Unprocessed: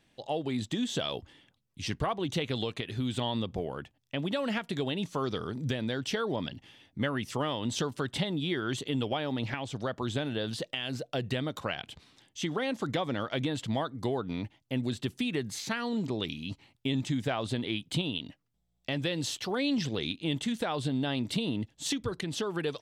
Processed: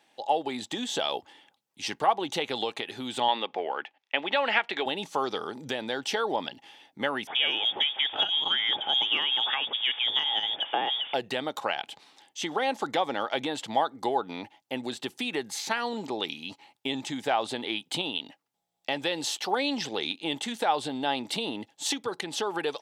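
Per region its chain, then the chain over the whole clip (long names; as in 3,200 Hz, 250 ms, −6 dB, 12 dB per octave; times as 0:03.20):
0:03.28–0:04.86: band-pass filter 290–3,900 Hz + parametric band 2,200 Hz +9.5 dB 1.4 octaves
0:07.27–0:11.14: converter with a step at zero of −40 dBFS + voice inversion scrambler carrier 3,500 Hz + saturating transformer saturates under 350 Hz
whole clip: high-pass filter 380 Hz 12 dB per octave; parametric band 830 Hz +12 dB 0.24 octaves; level +4 dB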